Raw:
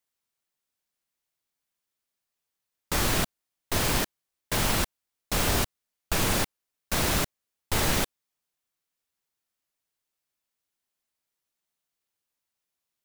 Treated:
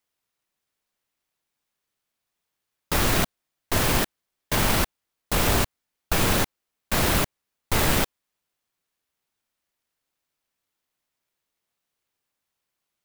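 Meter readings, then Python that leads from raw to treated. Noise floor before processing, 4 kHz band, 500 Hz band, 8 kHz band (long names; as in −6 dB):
below −85 dBFS, +2.0 dB, +4.0 dB, +1.5 dB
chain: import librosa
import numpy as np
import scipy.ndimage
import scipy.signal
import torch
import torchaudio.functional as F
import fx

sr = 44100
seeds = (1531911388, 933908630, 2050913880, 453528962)

y = fx.clock_jitter(x, sr, seeds[0], jitter_ms=0.04)
y = y * librosa.db_to_amplitude(4.0)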